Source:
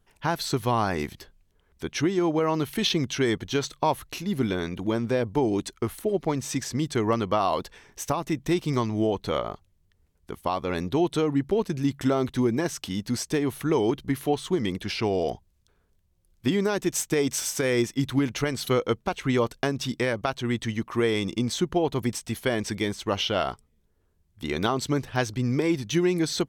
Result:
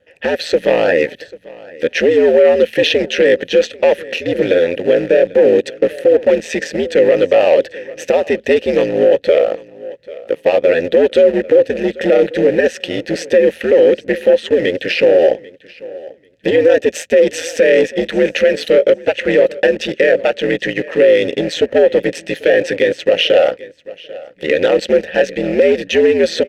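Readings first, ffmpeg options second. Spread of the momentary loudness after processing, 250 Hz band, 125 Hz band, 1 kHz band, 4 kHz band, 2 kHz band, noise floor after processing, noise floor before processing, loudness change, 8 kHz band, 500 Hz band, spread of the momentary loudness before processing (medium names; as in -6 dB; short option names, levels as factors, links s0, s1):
10 LU, +5.5 dB, -3.0 dB, +3.0 dB, +9.0 dB, +14.0 dB, -45 dBFS, -67 dBFS, +13.0 dB, no reading, +17.5 dB, 6 LU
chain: -filter_complex "[0:a]asplit=2[s0][s1];[s1]acrusher=bits=4:mix=0:aa=0.000001,volume=0.282[s2];[s0][s2]amix=inputs=2:normalize=0,asoftclip=type=tanh:threshold=0.1,aeval=exprs='val(0)*sin(2*PI*82*n/s)':c=same,asplit=3[s3][s4][s5];[s3]bandpass=f=530:t=q:w=8,volume=1[s6];[s4]bandpass=f=1840:t=q:w=8,volume=0.501[s7];[s5]bandpass=f=2480:t=q:w=8,volume=0.355[s8];[s6][s7][s8]amix=inputs=3:normalize=0,aecho=1:1:791|1582:0.0794|0.0175,alimiter=level_in=35.5:limit=0.891:release=50:level=0:latency=1,volume=0.891"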